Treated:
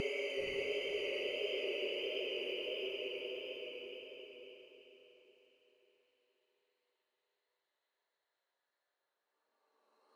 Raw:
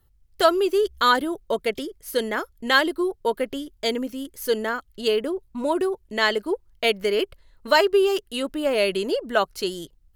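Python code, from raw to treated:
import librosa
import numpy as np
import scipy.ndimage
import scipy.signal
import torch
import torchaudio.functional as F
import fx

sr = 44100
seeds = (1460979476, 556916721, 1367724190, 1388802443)

y = fx.cycle_switch(x, sr, every=3, mode='muted')
y = fx.noise_reduce_blind(y, sr, reduce_db=21)
y = scipy.signal.sosfilt(scipy.signal.butter(4, 510.0, 'highpass', fs=sr, output='sos'), y)
y = fx.over_compress(y, sr, threshold_db=-35.0, ratio=-1.0)
y = fx.paulstretch(y, sr, seeds[0], factor=21.0, window_s=0.25, from_s=7.12)
y = fx.vibrato(y, sr, rate_hz=1.5, depth_cents=30.0)
y = fx.air_absorb(y, sr, metres=66.0)
y = fx.echo_diffused(y, sr, ms=519, feedback_pct=41, wet_db=-6.5)
y = y * librosa.db_to_amplitude(-6.0)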